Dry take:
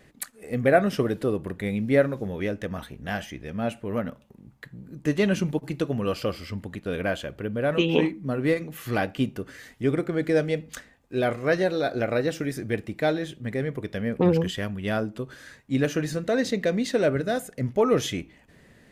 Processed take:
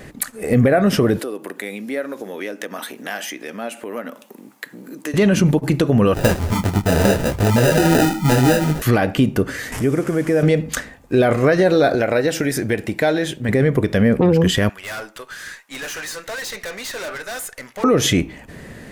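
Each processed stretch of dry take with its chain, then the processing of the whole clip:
1.19–5.14 s: Chebyshev high-pass 260 Hz, order 3 + compression 2.5:1, threshold -46 dBFS + tilt EQ +2 dB/octave
6.14–8.82 s: bass shelf 120 Hz +10.5 dB + sample-rate reducer 1.1 kHz + detune thickener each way 27 cents
9.72–10.43 s: one-bit delta coder 64 kbps, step -37 dBFS + peaking EQ 4 kHz -10.5 dB 0.4 oct + compression 2:1, threshold -41 dBFS
11.95–13.49 s: bass shelf 360 Hz -8.5 dB + compression 2:1, threshold -35 dBFS + band-stop 1.2 kHz, Q 9
14.69–17.84 s: high-pass 1.2 kHz + valve stage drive 43 dB, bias 0.4
whole clip: peaking EQ 3.4 kHz -3.5 dB 1.4 oct; compression, threshold -24 dBFS; loudness maximiser +23 dB; trim -5.5 dB

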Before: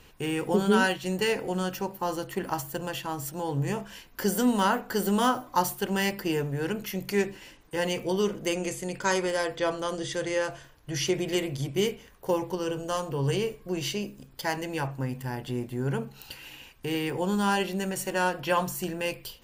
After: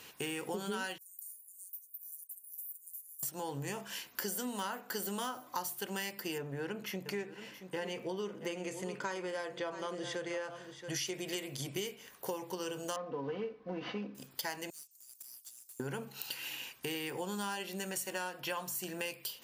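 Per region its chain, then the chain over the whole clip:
0.98–3.23 s: inverse Chebyshev high-pass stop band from 2.8 kHz, stop band 70 dB + compression 4:1, threshold -50 dBFS
6.38–10.90 s: low-pass 1.7 kHz 6 dB/octave + delay 676 ms -14.5 dB
12.96–14.15 s: CVSD coder 32 kbps + low-pass 1.3 kHz + comb 4 ms, depth 72%
14.70–15.80 s: inverse Chebyshev high-pass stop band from 1.8 kHz, stop band 60 dB + valve stage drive 49 dB, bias 0.55
whole clip: high-pass 120 Hz; tilt EQ +2 dB/octave; compression 6:1, threshold -37 dBFS; trim +1 dB

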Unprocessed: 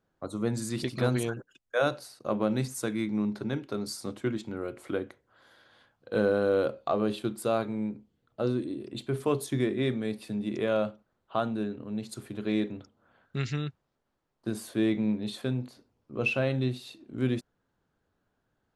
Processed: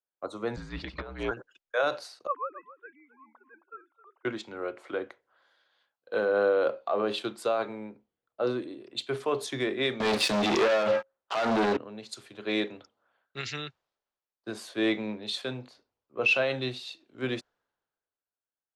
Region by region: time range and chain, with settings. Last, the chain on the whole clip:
0.56–1.31 s: low-pass 2.4 kHz + compressor with a negative ratio -30 dBFS, ratio -0.5 + frequency shift -59 Hz
2.27–4.25 s: formants replaced by sine waves + band-pass filter 1.1 kHz, Q 2.8 + delay 267 ms -10.5 dB
10.00–11.77 s: hum notches 60/120/180/240/300/360/420/480/540/600 Hz + waveshaping leveller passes 5
whole clip: three-band isolator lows -17 dB, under 420 Hz, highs -17 dB, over 6.7 kHz; peak limiter -26 dBFS; three bands expanded up and down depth 70%; trim +7 dB

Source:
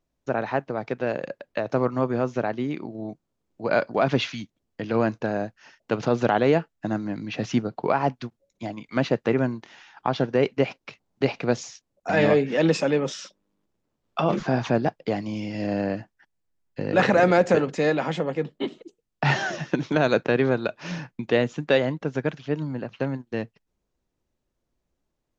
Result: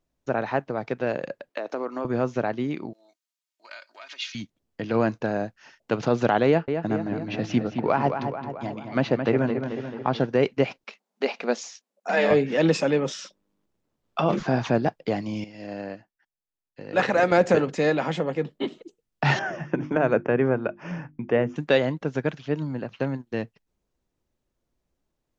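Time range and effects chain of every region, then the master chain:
1.50–2.05 s: high-pass 260 Hz 24 dB/octave + compression 3:1, threshold -26 dBFS
2.93–4.35 s: compression 5:1, threshold -23 dBFS + Bessel high-pass 2.9 kHz + comb 3.2 ms, depth 60%
6.46–10.20 s: distance through air 75 m + filtered feedback delay 218 ms, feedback 61%, low-pass 3.4 kHz, level -7 dB
10.84–12.31 s: brick-wall FIR high-pass 190 Hz + peaking EQ 300 Hz -13 dB 0.34 oct
15.44–17.32 s: bass shelf 280 Hz -7.5 dB + upward expansion, over -38 dBFS
19.39–21.56 s: boxcar filter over 11 samples + hum notches 50/100/150/200/250/300/350 Hz
whole clip: none

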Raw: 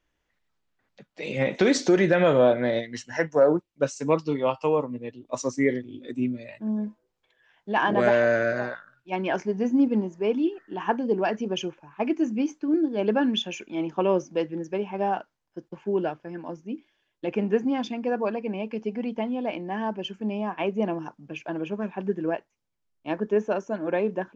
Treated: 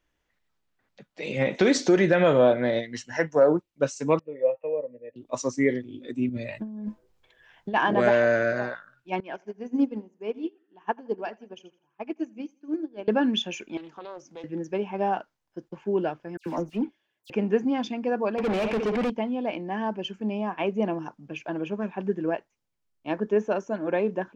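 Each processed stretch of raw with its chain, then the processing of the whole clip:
4.19–5.16 s: cascade formant filter e + peaking EQ 580 Hz +8 dB 0.4 oct
6.29–7.74 s: bass shelf 110 Hz +11.5 dB + compressor with a negative ratio -33 dBFS
9.20–13.08 s: high-pass 200 Hz 6 dB/octave + feedback delay 83 ms, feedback 41%, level -14 dB + upward expansion 2.5:1, over -34 dBFS
13.77–14.44 s: bass shelf 460 Hz -9.5 dB + compression 2:1, threshold -46 dBFS + loudspeaker Doppler distortion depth 0.34 ms
16.37–17.30 s: high-pass 84 Hz + waveshaping leveller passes 2 + phase dispersion lows, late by 90 ms, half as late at 2.8 kHz
18.38–19.10 s: flutter echo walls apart 11.4 m, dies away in 0.3 s + overdrive pedal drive 31 dB, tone 1.6 kHz, clips at -18.5 dBFS
whole clip: none

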